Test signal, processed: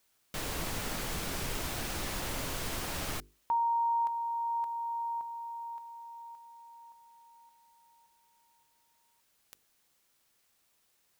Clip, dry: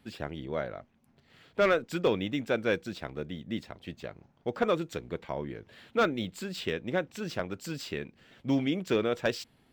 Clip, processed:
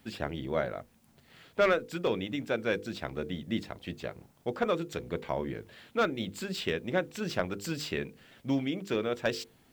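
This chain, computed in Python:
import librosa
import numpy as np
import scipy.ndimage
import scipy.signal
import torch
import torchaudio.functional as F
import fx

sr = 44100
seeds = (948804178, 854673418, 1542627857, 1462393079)

y = fx.hum_notches(x, sr, base_hz=50, count=10)
y = fx.rider(y, sr, range_db=3, speed_s=0.5)
y = fx.quant_dither(y, sr, seeds[0], bits=12, dither='triangular')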